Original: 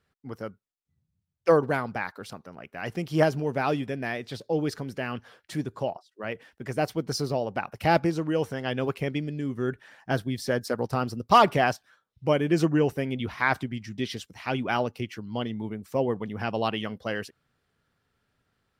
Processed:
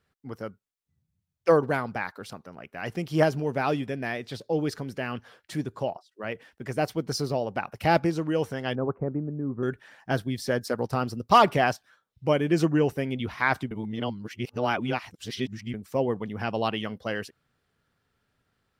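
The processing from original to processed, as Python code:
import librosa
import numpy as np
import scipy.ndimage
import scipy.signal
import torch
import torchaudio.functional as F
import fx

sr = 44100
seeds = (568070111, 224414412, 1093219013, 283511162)

y = fx.steep_lowpass(x, sr, hz=1300.0, slope=36, at=(8.75, 9.63))
y = fx.edit(y, sr, fx.reverse_span(start_s=13.71, length_s=2.03), tone=tone)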